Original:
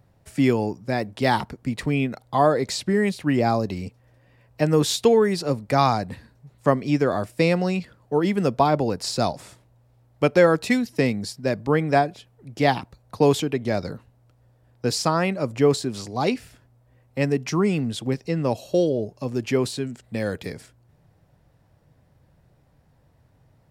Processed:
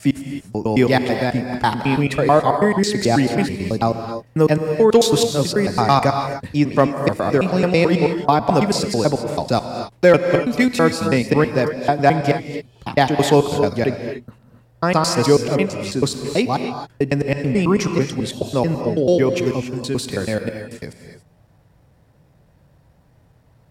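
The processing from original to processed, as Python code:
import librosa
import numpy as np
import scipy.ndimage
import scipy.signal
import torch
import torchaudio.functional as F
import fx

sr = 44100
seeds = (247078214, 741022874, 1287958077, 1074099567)

y = fx.block_reorder(x, sr, ms=109.0, group=4)
y = fx.rev_gated(y, sr, seeds[0], gate_ms=310, shape='rising', drr_db=6.0)
y = fx.clip_asym(y, sr, top_db=-9.5, bottom_db=-6.0)
y = F.gain(torch.from_numpy(y), 4.5).numpy()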